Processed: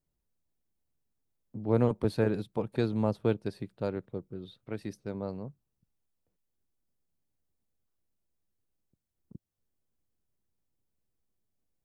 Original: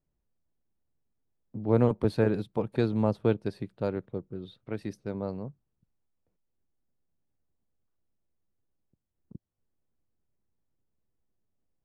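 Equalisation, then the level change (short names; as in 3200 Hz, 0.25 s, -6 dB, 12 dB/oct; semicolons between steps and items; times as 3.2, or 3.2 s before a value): high shelf 5000 Hz +6 dB; -2.5 dB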